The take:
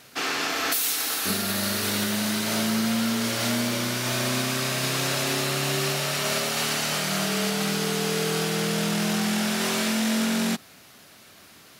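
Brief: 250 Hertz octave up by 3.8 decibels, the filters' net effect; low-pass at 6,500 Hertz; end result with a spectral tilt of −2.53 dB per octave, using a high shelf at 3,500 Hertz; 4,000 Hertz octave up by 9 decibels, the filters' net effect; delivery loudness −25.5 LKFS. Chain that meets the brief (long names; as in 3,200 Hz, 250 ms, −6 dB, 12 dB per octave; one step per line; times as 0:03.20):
low-pass filter 6,500 Hz
parametric band 250 Hz +4.5 dB
high-shelf EQ 3,500 Hz +5.5 dB
parametric band 4,000 Hz +8 dB
level −6 dB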